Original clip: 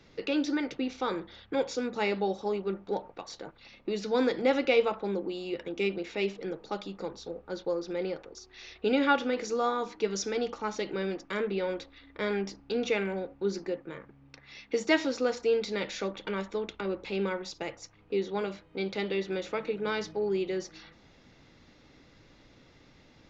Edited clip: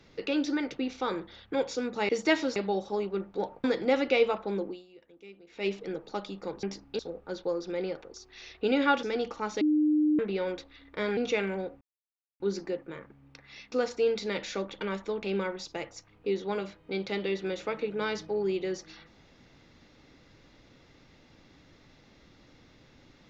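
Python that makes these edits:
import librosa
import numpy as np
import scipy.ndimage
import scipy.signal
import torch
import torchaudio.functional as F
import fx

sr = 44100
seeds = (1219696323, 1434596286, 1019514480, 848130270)

y = fx.edit(x, sr, fx.cut(start_s=3.17, length_s=1.04),
    fx.fade_down_up(start_s=5.23, length_s=1.0, db=-20.0, fade_s=0.23, curve='qua'),
    fx.cut(start_s=9.24, length_s=1.01),
    fx.bleep(start_s=10.83, length_s=0.58, hz=303.0, db=-21.0),
    fx.move(start_s=12.39, length_s=0.36, to_s=7.2),
    fx.insert_silence(at_s=13.39, length_s=0.59),
    fx.move(start_s=14.71, length_s=0.47, to_s=2.09),
    fx.cut(start_s=16.69, length_s=0.4), tone=tone)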